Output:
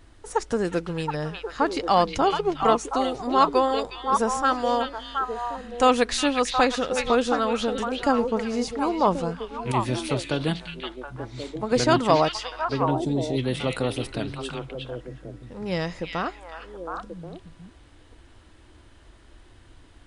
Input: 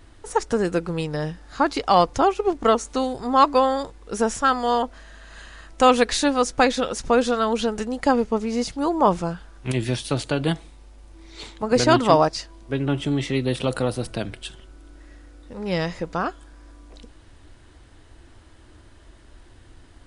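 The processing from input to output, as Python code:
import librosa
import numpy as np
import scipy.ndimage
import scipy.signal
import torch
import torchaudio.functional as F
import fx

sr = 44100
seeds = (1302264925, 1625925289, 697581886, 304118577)

y = fx.echo_stepped(x, sr, ms=361, hz=2800.0, octaves=-1.4, feedback_pct=70, wet_db=0)
y = fx.spec_box(y, sr, start_s=12.9, length_s=0.48, low_hz=1000.0, high_hz=3400.0, gain_db=-13)
y = y * 10.0 ** (-3.0 / 20.0)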